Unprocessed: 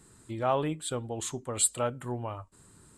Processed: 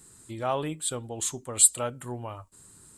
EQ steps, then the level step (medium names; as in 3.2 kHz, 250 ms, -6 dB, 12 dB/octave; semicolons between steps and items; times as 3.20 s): treble shelf 4.7 kHz +11.5 dB; -1.5 dB